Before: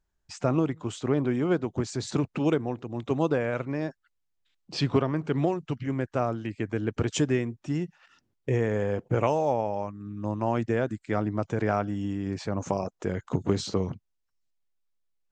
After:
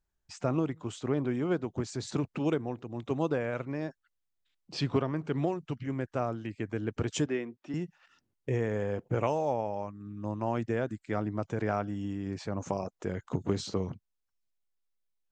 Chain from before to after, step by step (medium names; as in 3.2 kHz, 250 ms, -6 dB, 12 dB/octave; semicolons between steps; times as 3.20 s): 7.26–7.74 s: three-band isolator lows -22 dB, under 210 Hz, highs -22 dB, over 5.2 kHz; trim -4.5 dB